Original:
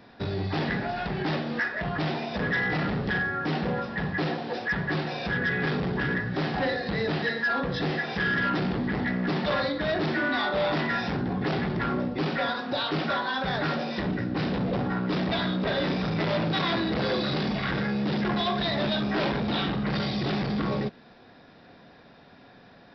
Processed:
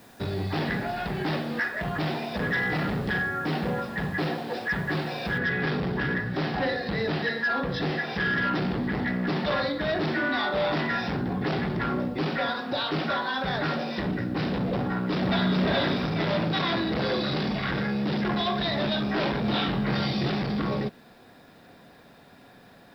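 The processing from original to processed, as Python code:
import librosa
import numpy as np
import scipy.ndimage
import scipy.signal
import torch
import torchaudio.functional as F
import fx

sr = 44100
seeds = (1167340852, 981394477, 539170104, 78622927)

y = fx.noise_floor_step(x, sr, seeds[0], at_s=5.38, before_db=-59, after_db=-70, tilt_db=0.0)
y = fx.echo_throw(y, sr, start_s=14.8, length_s=0.83, ms=420, feedback_pct=35, wet_db=-1.0)
y = fx.doubler(y, sr, ms=23.0, db=-3.5, at=(19.42, 20.29))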